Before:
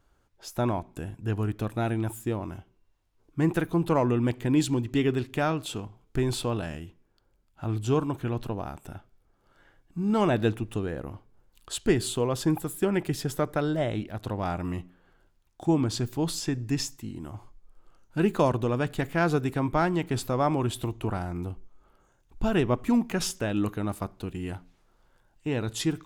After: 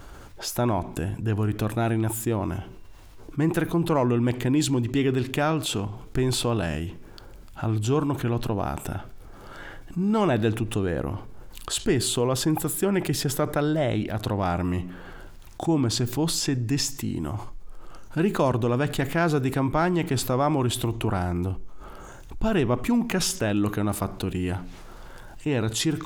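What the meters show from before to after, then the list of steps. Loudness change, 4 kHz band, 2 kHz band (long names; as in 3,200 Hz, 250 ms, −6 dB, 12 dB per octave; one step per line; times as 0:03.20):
+3.0 dB, +6.5 dB, +3.0 dB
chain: envelope flattener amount 50%
level −1 dB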